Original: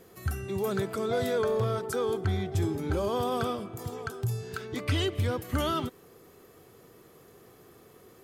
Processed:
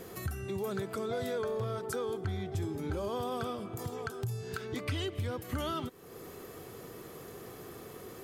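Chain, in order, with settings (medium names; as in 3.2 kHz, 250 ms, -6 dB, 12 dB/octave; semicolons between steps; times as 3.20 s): compression 2.5:1, threshold -48 dBFS, peak gain reduction 15.5 dB; trim +8 dB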